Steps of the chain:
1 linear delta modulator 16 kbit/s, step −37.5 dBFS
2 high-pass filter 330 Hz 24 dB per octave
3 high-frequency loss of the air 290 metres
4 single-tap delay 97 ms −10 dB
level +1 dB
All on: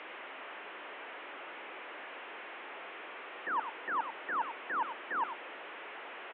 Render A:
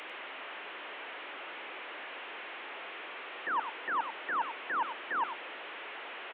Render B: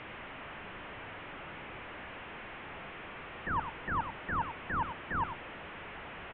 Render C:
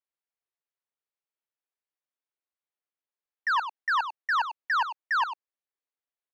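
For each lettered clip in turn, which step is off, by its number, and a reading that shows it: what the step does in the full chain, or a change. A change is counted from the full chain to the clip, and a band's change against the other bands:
3, 4 kHz band +4.5 dB
2, 250 Hz band +7.5 dB
1, change in momentary loudness spread −5 LU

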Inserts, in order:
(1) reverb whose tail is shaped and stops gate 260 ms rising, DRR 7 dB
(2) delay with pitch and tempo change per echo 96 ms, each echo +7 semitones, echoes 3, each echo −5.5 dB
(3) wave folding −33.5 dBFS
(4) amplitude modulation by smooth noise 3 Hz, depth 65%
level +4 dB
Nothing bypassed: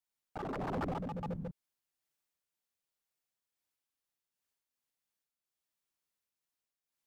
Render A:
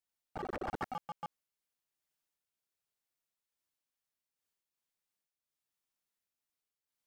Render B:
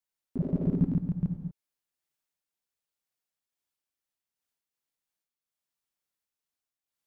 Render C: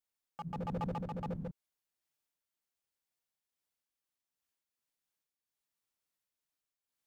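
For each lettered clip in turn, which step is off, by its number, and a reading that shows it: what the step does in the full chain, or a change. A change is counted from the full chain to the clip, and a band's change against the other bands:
1, change in crest factor +4.0 dB
3, change in crest factor +5.5 dB
2, change in momentary loudness spread +5 LU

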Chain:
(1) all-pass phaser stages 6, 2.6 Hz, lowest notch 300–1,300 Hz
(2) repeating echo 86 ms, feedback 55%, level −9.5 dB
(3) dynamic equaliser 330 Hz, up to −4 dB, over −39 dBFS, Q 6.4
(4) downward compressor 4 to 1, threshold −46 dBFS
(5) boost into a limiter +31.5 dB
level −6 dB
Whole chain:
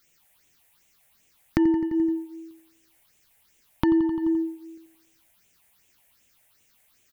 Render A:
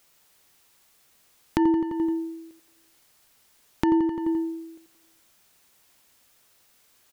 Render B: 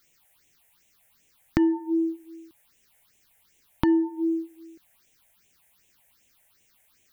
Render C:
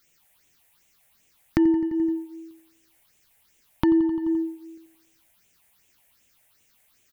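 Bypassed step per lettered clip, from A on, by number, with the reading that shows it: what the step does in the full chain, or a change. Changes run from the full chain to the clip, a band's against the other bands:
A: 1, 1 kHz band +7.0 dB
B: 2, change in momentary loudness spread −7 LU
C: 3, 1 kHz band −1.5 dB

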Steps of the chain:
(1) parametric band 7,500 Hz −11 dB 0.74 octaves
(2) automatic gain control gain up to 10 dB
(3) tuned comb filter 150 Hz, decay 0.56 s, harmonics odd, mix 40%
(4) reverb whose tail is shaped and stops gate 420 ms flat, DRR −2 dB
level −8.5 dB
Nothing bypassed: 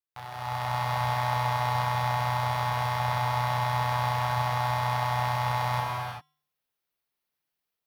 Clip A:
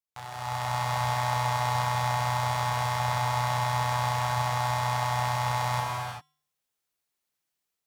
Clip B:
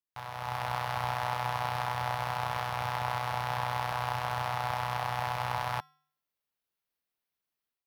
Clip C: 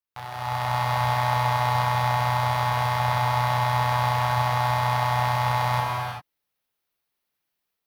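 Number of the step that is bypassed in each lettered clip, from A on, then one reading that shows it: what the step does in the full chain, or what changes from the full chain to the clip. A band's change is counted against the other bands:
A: 1, 8 kHz band +7.5 dB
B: 4, change in momentary loudness spread −3 LU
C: 3, change in integrated loudness +4.5 LU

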